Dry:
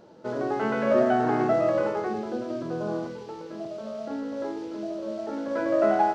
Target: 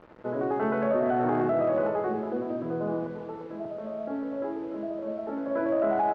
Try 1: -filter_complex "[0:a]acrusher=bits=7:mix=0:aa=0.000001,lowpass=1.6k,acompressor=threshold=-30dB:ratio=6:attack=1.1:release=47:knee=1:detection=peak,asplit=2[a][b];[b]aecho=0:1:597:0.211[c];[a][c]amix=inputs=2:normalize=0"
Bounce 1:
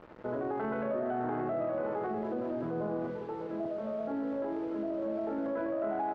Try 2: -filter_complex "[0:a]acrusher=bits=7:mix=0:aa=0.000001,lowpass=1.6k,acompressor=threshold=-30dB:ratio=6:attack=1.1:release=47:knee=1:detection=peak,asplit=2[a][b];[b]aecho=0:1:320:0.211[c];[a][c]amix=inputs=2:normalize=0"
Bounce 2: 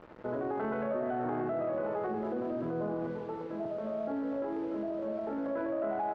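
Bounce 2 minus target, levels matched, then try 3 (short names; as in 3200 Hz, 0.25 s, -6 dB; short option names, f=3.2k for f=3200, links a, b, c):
compressor: peak gain reduction +8 dB
-filter_complex "[0:a]acrusher=bits=7:mix=0:aa=0.000001,lowpass=1.6k,acompressor=threshold=-20.5dB:ratio=6:attack=1.1:release=47:knee=1:detection=peak,asplit=2[a][b];[b]aecho=0:1:320:0.211[c];[a][c]amix=inputs=2:normalize=0"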